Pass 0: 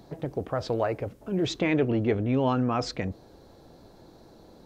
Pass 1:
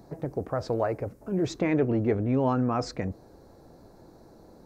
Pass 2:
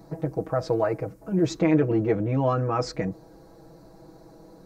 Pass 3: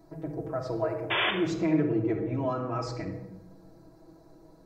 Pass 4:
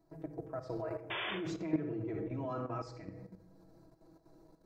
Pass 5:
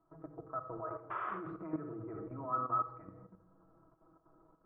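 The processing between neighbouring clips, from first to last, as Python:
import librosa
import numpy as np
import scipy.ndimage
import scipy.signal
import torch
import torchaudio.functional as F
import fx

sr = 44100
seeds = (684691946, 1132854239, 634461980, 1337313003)

y1 = fx.peak_eq(x, sr, hz=3200.0, db=-13.0, octaves=0.78)
y2 = y1 + 0.96 * np.pad(y1, (int(6.2 * sr / 1000.0), 0))[:len(y1)]
y3 = fx.spec_paint(y2, sr, seeds[0], shape='noise', start_s=1.1, length_s=0.21, low_hz=320.0, high_hz=3600.0, level_db=-19.0)
y3 = fx.room_shoebox(y3, sr, seeds[1], volume_m3=3900.0, walls='furnished', distance_m=3.0)
y3 = y3 * librosa.db_to_amplitude(-9.0)
y4 = fx.level_steps(y3, sr, step_db=11)
y4 = y4 * librosa.db_to_amplitude(-5.0)
y5 = fx.ladder_lowpass(y4, sr, hz=1300.0, resonance_pct=85)
y5 = y5 * librosa.db_to_amplitude(6.5)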